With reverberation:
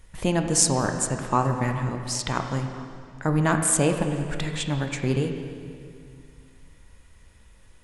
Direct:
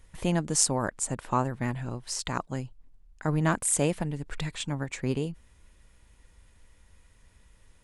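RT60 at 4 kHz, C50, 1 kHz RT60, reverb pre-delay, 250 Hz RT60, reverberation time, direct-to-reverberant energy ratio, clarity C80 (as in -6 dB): 2.0 s, 6.0 dB, 2.2 s, 7 ms, 2.5 s, 2.3 s, 4.5 dB, 7.0 dB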